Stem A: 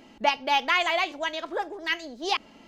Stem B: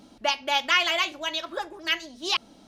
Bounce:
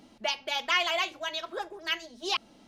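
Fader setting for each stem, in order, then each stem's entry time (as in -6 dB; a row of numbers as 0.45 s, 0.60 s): -11.0 dB, -5.0 dB; 0.00 s, 0.00 s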